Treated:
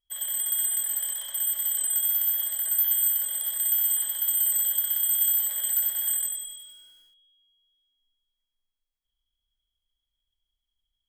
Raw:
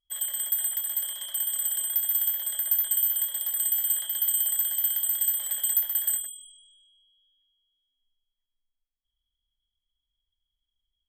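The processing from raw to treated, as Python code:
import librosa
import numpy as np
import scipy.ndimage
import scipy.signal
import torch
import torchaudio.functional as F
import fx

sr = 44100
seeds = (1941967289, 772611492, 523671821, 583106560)

p1 = 10.0 ** (-27.5 / 20.0) * np.tanh(x / 10.0 ** (-27.5 / 20.0))
p2 = x + (p1 * 10.0 ** (-10.5 / 20.0))
p3 = fx.room_flutter(p2, sr, wall_m=12.0, rt60_s=0.58)
p4 = fx.echo_crushed(p3, sr, ms=93, feedback_pct=55, bits=9, wet_db=-6)
y = p4 * 10.0 ** (-3.0 / 20.0)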